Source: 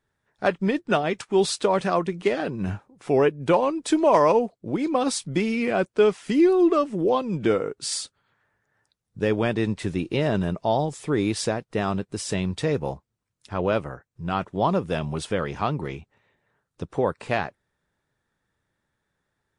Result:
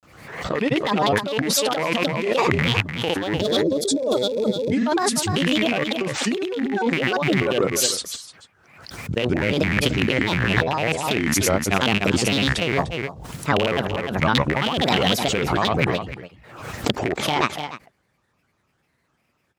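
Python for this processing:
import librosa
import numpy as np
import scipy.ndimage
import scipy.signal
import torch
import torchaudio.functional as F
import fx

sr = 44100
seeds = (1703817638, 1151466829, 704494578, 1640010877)

y = fx.rattle_buzz(x, sr, strikes_db=-28.0, level_db=-12.0)
y = fx.granulator(y, sr, seeds[0], grain_ms=100.0, per_s=20.0, spray_ms=100.0, spread_st=7)
y = fx.spec_box(y, sr, start_s=3.36, length_s=1.22, low_hz=640.0, high_hz=3300.0, gain_db=-21)
y = y + 10.0 ** (-15.0 / 20.0) * np.pad(y, (int(299 * sr / 1000.0), 0))[:len(y)]
y = fx.over_compress(y, sr, threshold_db=-27.0, ratio=-1.0)
y = scipy.signal.sosfilt(scipy.signal.butter(2, 57.0, 'highpass', fs=sr, output='sos'), y)
y = fx.pre_swell(y, sr, db_per_s=65.0)
y = y * librosa.db_to_amplitude(6.0)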